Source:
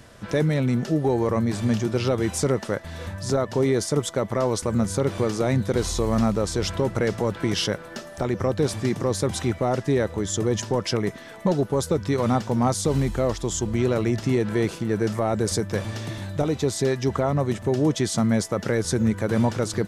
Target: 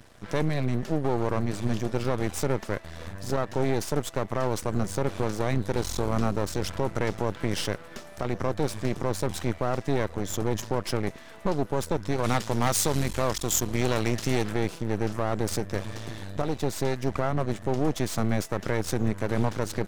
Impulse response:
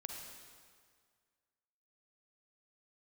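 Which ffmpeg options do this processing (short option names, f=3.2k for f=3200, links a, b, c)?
-filter_complex "[0:a]aeval=exprs='max(val(0),0)':c=same,asplit=3[a][b][c];[a]afade=t=out:st=12.23:d=0.02[d];[b]highshelf=f=2.1k:g=11,afade=t=in:st=12.23:d=0.02,afade=t=out:st=14.51:d=0.02[e];[c]afade=t=in:st=14.51:d=0.02[f];[d][e][f]amix=inputs=3:normalize=0,volume=-1.5dB"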